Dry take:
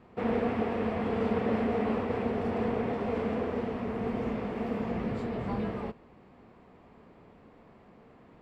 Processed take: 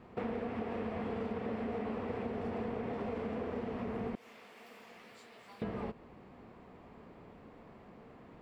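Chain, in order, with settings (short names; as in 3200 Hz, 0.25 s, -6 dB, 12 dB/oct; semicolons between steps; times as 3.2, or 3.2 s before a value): 4.15–5.62 differentiator; compressor, threshold -36 dBFS, peak gain reduction 11.5 dB; gain +1 dB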